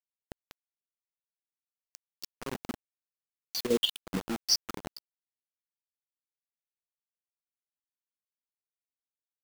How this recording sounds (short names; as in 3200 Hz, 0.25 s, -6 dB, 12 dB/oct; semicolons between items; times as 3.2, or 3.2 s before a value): phasing stages 8, 0.82 Hz, lowest notch 490–1800 Hz; a quantiser's noise floor 6-bit, dither none; chopped level 5.4 Hz, depth 65%, duty 80%